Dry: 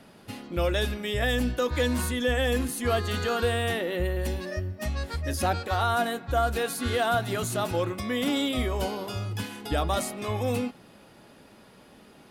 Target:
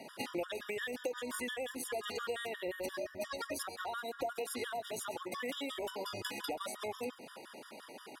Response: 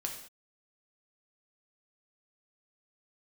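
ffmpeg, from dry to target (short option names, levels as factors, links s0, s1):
-af "highpass=360,acompressor=threshold=0.00891:ratio=10,atempo=1.5,aecho=1:1:132:0.119,afftfilt=real='re*gt(sin(2*PI*5.7*pts/sr)*(1-2*mod(floor(b*sr/1024/960),2)),0)':imag='im*gt(sin(2*PI*5.7*pts/sr)*(1-2*mod(floor(b*sr/1024/960),2)),0)':win_size=1024:overlap=0.75,volume=2.37"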